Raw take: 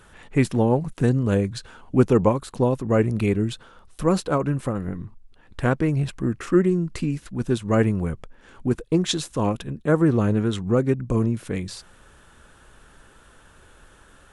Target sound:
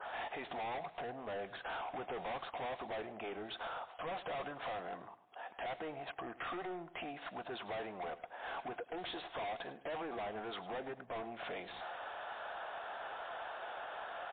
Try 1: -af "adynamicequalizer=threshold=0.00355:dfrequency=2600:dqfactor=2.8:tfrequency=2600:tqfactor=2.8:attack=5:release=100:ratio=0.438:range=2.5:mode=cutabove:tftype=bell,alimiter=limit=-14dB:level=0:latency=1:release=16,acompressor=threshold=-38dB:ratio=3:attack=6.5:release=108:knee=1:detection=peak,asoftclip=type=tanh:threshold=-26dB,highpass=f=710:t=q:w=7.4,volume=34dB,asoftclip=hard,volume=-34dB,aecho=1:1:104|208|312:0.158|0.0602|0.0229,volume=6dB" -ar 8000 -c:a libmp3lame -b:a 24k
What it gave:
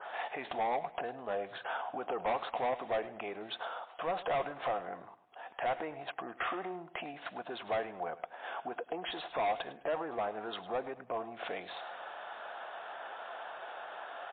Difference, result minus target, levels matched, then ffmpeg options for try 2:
overloaded stage: distortion -7 dB
-af "adynamicequalizer=threshold=0.00355:dfrequency=2600:dqfactor=2.8:tfrequency=2600:tqfactor=2.8:attack=5:release=100:ratio=0.438:range=2.5:mode=cutabove:tftype=bell,alimiter=limit=-14dB:level=0:latency=1:release=16,acompressor=threshold=-38dB:ratio=3:attack=6.5:release=108:knee=1:detection=peak,asoftclip=type=tanh:threshold=-26dB,highpass=f=710:t=q:w=7.4,volume=44.5dB,asoftclip=hard,volume=-44.5dB,aecho=1:1:104|208|312:0.158|0.0602|0.0229,volume=6dB" -ar 8000 -c:a libmp3lame -b:a 24k

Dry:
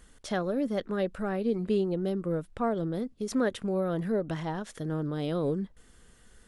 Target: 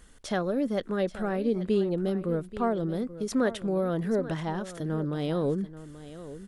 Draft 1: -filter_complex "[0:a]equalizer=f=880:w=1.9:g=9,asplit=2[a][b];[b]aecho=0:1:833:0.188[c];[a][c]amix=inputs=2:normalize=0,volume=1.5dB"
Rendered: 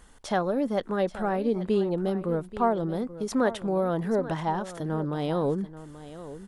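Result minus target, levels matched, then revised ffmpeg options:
1000 Hz band +5.0 dB
-filter_complex "[0:a]asplit=2[a][b];[b]aecho=0:1:833:0.188[c];[a][c]amix=inputs=2:normalize=0,volume=1.5dB"

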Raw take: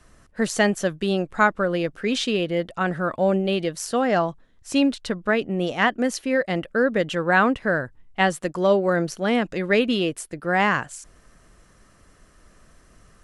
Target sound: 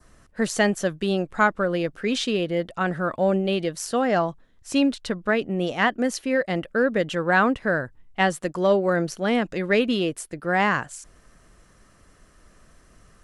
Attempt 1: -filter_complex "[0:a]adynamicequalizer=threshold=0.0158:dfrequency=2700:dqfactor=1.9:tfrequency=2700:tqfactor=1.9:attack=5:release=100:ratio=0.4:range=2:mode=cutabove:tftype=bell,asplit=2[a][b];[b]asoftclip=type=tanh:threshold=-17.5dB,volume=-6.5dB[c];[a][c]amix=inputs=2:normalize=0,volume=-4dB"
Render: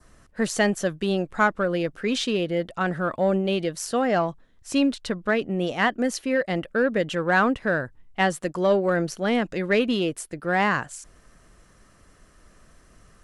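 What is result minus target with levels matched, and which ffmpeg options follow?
soft clip: distortion +11 dB
-filter_complex "[0:a]adynamicequalizer=threshold=0.0158:dfrequency=2700:dqfactor=1.9:tfrequency=2700:tqfactor=1.9:attack=5:release=100:ratio=0.4:range=2:mode=cutabove:tftype=bell,asplit=2[a][b];[b]asoftclip=type=tanh:threshold=-8.5dB,volume=-6.5dB[c];[a][c]amix=inputs=2:normalize=0,volume=-4dB"

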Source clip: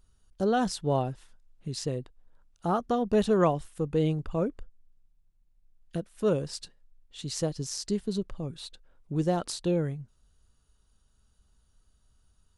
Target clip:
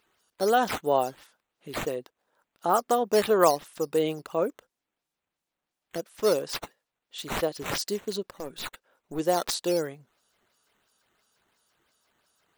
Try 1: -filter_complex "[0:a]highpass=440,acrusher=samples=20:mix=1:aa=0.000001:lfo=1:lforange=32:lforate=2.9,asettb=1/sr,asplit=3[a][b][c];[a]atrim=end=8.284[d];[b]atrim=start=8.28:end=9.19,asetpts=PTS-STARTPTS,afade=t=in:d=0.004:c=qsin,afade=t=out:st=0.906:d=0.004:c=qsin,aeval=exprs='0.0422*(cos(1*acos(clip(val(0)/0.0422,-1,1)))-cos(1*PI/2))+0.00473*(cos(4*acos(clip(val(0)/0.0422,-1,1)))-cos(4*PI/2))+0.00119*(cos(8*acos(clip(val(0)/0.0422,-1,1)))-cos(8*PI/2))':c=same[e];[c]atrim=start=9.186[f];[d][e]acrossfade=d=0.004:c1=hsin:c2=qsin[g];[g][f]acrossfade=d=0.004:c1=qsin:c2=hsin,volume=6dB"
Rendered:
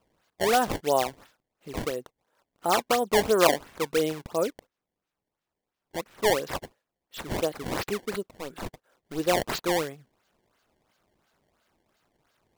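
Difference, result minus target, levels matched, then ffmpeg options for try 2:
decimation with a swept rate: distortion +11 dB
-filter_complex "[0:a]highpass=440,acrusher=samples=5:mix=1:aa=0.000001:lfo=1:lforange=8:lforate=2.9,asettb=1/sr,asplit=3[a][b][c];[a]atrim=end=8.284[d];[b]atrim=start=8.28:end=9.19,asetpts=PTS-STARTPTS,afade=t=in:d=0.004:c=qsin,afade=t=out:st=0.906:d=0.004:c=qsin,aeval=exprs='0.0422*(cos(1*acos(clip(val(0)/0.0422,-1,1)))-cos(1*PI/2))+0.00473*(cos(4*acos(clip(val(0)/0.0422,-1,1)))-cos(4*PI/2))+0.00119*(cos(8*acos(clip(val(0)/0.0422,-1,1)))-cos(8*PI/2))':c=same[e];[c]atrim=start=9.186[f];[d][e]acrossfade=d=0.004:c1=hsin:c2=qsin[g];[g][f]acrossfade=d=0.004:c1=qsin:c2=hsin,volume=6dB"

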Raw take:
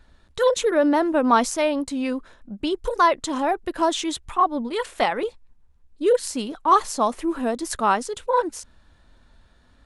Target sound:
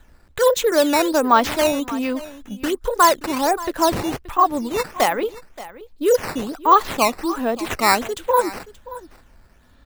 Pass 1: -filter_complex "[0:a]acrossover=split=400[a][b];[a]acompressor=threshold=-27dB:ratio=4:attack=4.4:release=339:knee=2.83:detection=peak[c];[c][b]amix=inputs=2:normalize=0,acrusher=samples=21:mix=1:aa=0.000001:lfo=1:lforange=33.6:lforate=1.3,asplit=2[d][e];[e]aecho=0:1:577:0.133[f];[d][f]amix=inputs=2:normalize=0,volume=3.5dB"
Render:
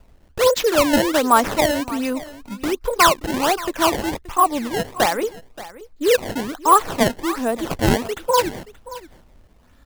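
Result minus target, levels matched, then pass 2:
decimation with a swept rate: distortion +8 dB
-filter_complex "[0:a]acrossover=split=400[a][b];[a]acompressor=threshold=-27dB:ratio=4:attack=4.4:release=339:knee=2.83:detection=peak[c];[c][b]amix=inputs=2:normalize=0,acrusher=samples=8:mix=1:aa=0.000001:lfo=1:lforange=12.8:lforate=1.3,asplit=2[d][e];[e]aecho=0:1:577:0.133[f];[d][f]amix=inputs=2:normalize=0,volume=3.5dB"

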